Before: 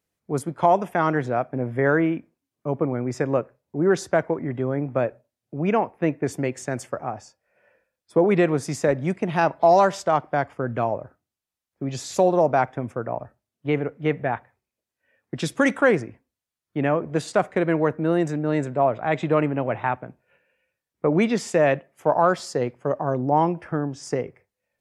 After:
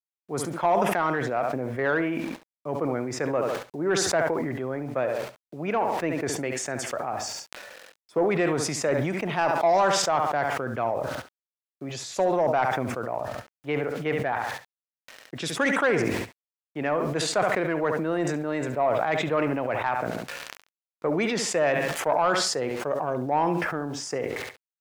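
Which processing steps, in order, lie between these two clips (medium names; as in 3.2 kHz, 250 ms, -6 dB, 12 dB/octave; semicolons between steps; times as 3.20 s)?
word length cut 10-bit, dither none; on a send: feedback delay 69 ms, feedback 20%, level -14 dB; on the sum: overdrive pedal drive 11 dB, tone 5.1 kHz, clips at -5.5 dBFS; decay stretcher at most 26 dB/s; trim -7 dB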